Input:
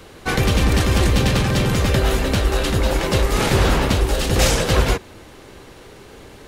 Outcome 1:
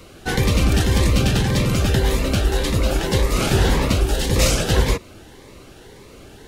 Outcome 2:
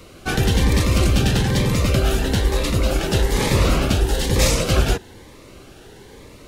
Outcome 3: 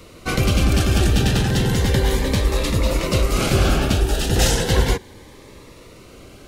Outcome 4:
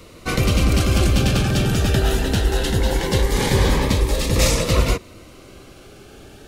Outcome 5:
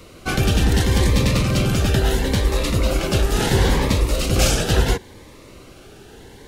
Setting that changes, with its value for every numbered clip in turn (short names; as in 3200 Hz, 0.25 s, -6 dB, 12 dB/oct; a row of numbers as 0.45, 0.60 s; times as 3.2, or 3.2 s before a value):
cascading phaser, rate: 1.8, 1.1, 0.34, 0.21, 0.73 Hz